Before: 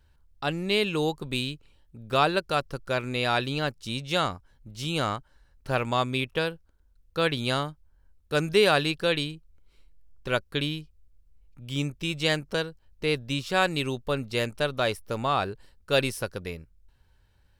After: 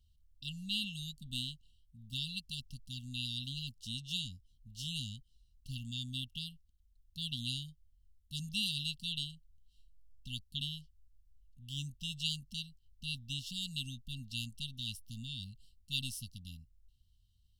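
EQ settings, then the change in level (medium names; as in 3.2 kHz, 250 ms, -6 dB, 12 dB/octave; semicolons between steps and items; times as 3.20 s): brick-wall FIR band-stop 260–2700 Hz; peaking EQ 190 Hz -6 dB 1.5 oct; -6.0 dB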